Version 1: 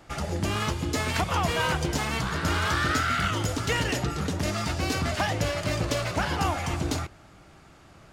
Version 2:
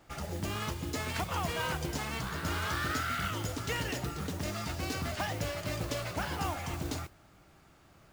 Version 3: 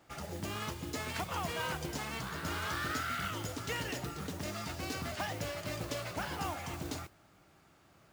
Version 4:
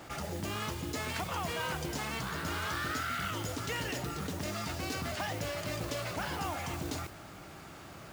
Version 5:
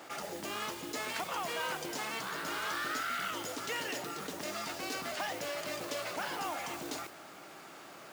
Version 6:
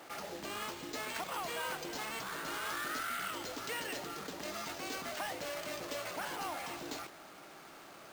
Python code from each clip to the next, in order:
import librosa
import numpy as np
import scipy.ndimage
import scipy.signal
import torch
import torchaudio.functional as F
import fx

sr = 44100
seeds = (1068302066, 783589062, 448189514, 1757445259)

y1 = fx.mod_noise(x, sr, seeds[0], snr_db=16)
y1 = y1 * 10.0 ** (-8.0 / 20.0)
y2 = fx.highpass(y1, sr, hz=100.0, slope=6)
y2 = y2 * 10.0 ** (-2.5 / 20.0)
y3 = fx.env_flatten(y2, sr, amount_pct=50)
y4 = scipy.signal.sosfilt(scipy.signal.butter(2, 310.0, 'highpass', fs=sr, output='sos'), y3)
y5 = np.repeat(y4[::4], 4)[:len(y4)]
y5 = y5 * 10.0 ** (-2.5 / 20.0)